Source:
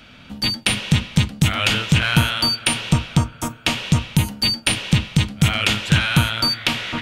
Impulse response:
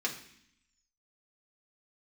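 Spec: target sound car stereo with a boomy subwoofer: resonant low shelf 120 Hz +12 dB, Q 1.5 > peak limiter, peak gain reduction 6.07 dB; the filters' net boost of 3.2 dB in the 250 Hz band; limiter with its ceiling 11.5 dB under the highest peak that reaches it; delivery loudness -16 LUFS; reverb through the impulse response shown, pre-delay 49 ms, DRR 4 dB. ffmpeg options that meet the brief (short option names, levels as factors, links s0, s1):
-filter_complex "[0:a]equalizer=f=250:t=o:g=7.5,alimiter=limit=0.251:level=0:latency=1,asplit=2[s0][s1];[1:a]atrim=start_sample=2205,adelay=49[s2];[s1][s2]afir=irnorm=-1:irlink=0,volume=0.355[s3];[s0][s3]amix=inputs=2:normalize=0,lowshelf=f=120:t=q:w=1.5:g=12,volume=1.5,alimiter=limit=0.501:level=0:latency=1"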